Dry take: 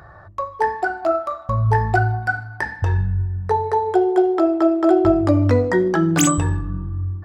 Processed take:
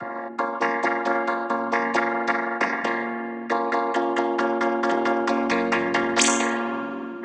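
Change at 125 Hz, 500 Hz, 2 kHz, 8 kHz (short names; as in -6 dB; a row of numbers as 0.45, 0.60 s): -26.5, -5.5, +1.0, -1.0 dB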